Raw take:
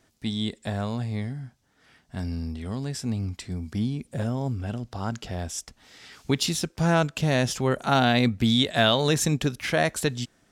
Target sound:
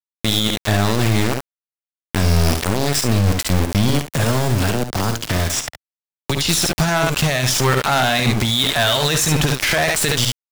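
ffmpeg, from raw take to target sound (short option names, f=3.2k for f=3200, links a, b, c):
-filter_complex "[0:a]equalizer=f=270:w=0.67:g=-11,bandreject=f=510:w=15,aeval=exprs='val(0)*gte(abs(val(0)),0.0188)':c=same,asettb=1/sr,asplit=3[a][b][c];[a]atrim=end=3.894[d];[b]atrim=start=3.89:end=6.49,asetpts=PTS-STARTPTS,afade=t=in:d=0.004:c=qsin,afade=t=out:st=2.596:d=0.004:c=qsin,acrossover=split=82|310|3600[e][f][g][h];[e]acompressor=threshold=-57dB:ratio=4[i];[f]acompressor=threshold=-43dB:ratio=4[j];[g]acompressor=threshold=-48dB:ratio=4[k];[h]acompressor=threshold=-51dB:ratio=4[l];[i][j][k][l]amix=inputs=4:normalize=0[m];[c]atrim=start=6.486[n];[d][m]acrossfade=d=0.004:c1=hsin:c2=qsin[o];[o][n]acrossfade=d=0.004:c1=qsin:c2=hsin,asoftclip=type=tanh:threshold=-17.5dB,aeval=exprs='0.133*(cos(1*acos(clip(val(0)/0.133,-1,1)))-cos(1*PI/2))+0.0106*(cos(3*acos(clip(val(0)/0.133,-1,1)))-cos(3*PI/2))+0.0266*(cos(6*acos(clip(val(0)/0.133,-1,1)))-cos(6*PI/2))+0.0237*(cos(8*acos(clip(val(0)/0.133,-1,1)))-cos(8*PI/2))':c=same,aecho=1:1:55|70:0.188|0.282,alimiter=level_in=35dB:limit=-1dB:release=50:level=0:latency=1,volume=-6.5dB"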